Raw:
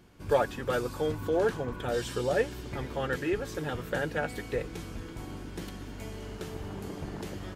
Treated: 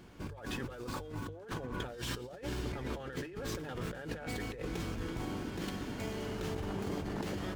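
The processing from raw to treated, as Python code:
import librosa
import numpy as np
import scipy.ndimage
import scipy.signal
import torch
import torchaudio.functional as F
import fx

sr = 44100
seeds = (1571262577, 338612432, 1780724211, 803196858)

y = fx.over_compress(x, sr, threshold_db=-39.0, ratio=-1.0)
y = fx.hum_notches(y, sr, base_hz=50, count=3)
y = fx.running_max(y, sr, window=3)
y = y * librosa.db_to_amplitude(-1.0)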